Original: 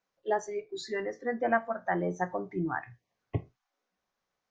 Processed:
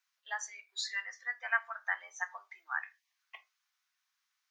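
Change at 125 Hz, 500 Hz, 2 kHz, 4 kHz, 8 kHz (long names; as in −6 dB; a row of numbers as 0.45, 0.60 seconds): below −40 dB, −24.0 dB, +2.5 dB, +5.5 dB, can't be measured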